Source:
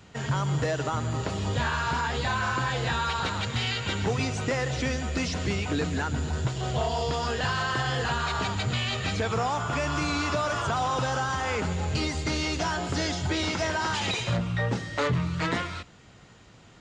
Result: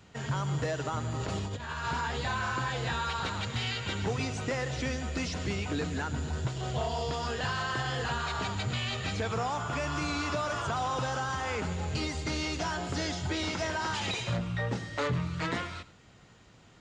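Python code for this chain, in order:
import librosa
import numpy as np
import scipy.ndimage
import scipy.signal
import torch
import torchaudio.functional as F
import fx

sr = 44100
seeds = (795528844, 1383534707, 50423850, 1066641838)

y = fx.over_compress(x, sr, threshold_db=-30.0, ratio=-0.5, at=(1.19, 1.86))
y = y + 10.0 ** (-18.5 / 20.0) * np.pad(y, (int(101 * sr / 1000.0), 0))[:len(y)]
y = F.gain(torch.from_numpy(y), -4.5).numpy()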